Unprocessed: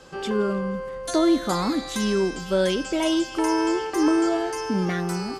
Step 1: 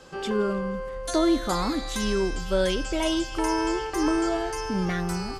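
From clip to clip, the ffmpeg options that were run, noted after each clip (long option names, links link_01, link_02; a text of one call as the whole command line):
ffmpeg -i in.wav -af "asubboost=boost=9:cutoff=81,volume=-1dB" out.wav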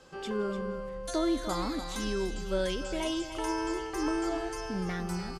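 ffmpeg -i in.wav -af "aecho=1:1:296:0.299,volume=-7dB" out.wav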